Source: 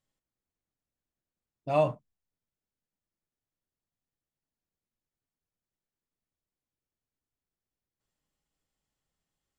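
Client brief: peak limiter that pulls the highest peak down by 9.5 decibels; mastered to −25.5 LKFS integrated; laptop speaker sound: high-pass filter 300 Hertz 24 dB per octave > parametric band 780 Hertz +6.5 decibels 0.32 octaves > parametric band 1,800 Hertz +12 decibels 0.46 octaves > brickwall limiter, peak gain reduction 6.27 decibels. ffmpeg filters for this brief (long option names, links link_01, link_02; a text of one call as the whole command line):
ffmpeg -i in.wav -af "alimiter=limit=-22.5dB:level=0:latency=1,highpass=frequency=300:width=0.5412,highpass=frequency=300:width=1.3066,equalizer=frequency=780:width_type=o:width=0.32:gain=6.5,equalizer=frequency=1800:width_type=o:width=0.46:gain=12,volume=11.5dB,alimiter=limit=-13dB:level=0:latency=1" out.wav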